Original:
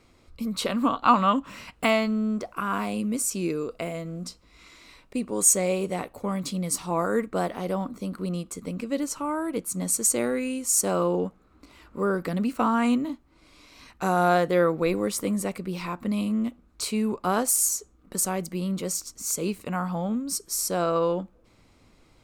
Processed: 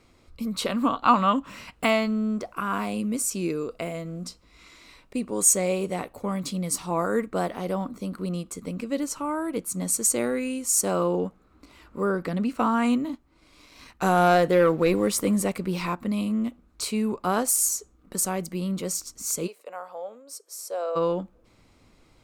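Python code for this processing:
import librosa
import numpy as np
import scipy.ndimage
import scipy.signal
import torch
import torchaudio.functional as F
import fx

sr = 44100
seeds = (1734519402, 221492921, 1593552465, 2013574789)

y = fx.high_shelf(x, sr, hz=9800.0, db=-10.5, at=(12.11, 12.58))
y = fx.leveller(y, sr, passes=1, at=(13.13, 15.95))
y = fx.ladder_highpass(y, sr, hz=470.0, resonance_pct=60, at=(19.46, 20.95), fade=0.02)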